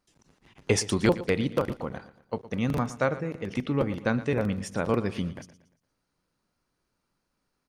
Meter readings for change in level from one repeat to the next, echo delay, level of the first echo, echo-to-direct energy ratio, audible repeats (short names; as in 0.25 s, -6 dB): -8.0 dB, 0.116 s, -16.0 dB, -15.5 dB, 3